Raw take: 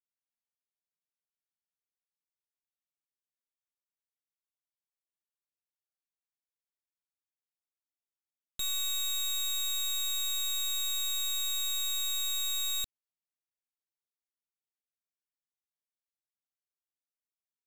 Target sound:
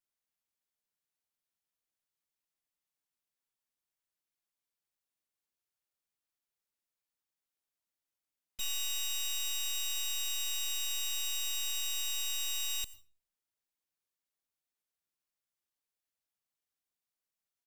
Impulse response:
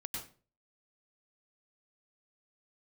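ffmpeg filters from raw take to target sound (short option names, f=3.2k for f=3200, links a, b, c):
-filter_complex "[0:a]alimiter=level_in=14dB:limit=-24dB:level=0:latency=1,volume=-14dB,asplit=4[a][b][c][d];[b]asetrate=29433,aresample=44100,atempo=1.49831,volume=-14dB[e];[c]asetrate=33038,aresample=44100,atempo=1.33484,volume=-5dB[f];[d]asetrate=35002,aresample=44100,atempo=1.25992,volume=-9dB[g];[a][e][f][g]amix=inputs=4:normalize=0,asplit=2[h][i];[1:a]atrim=start_sample=2205,highshelf=f=7.8k:g=10.5[j];[i][j]afir=irnorm=-1:irlink=0,volume=-17dB[k];[h][k]amix=inputs=2:normalize=0"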